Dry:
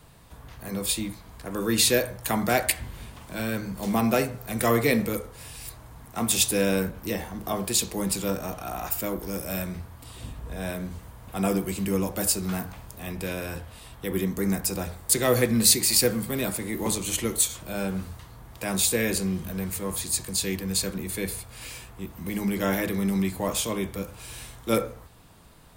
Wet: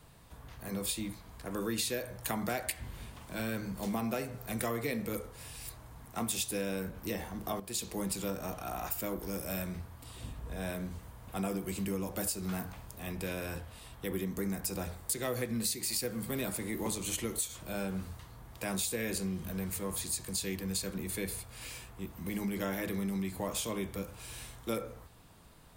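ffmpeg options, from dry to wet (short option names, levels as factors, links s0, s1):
-filter_complex "[0:a]asplit=2[s0][s1];[s0]atrim=end=7.6,asetpts=PTS-STARTPTS,afade=t=out:st=7.596:d=0.004:c=hsin:silence=0.211349[s2];[s1]atrim=start=7.6,asetpts=PTS-STARTPTS,afade=t=in:d=0.41:silence=0.211349[s3];[s2][s3]concat=n=2:v=0:a=1,acompressor=threshold=0.0501:ratio=6,volume=0.562"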